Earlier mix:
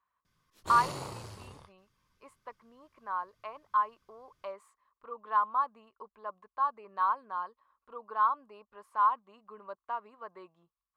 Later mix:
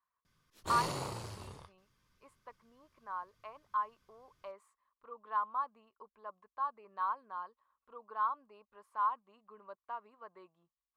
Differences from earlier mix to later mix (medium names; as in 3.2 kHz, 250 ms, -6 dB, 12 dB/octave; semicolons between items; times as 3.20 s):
speech -6.5 dB; reverb: on, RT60 1.4 s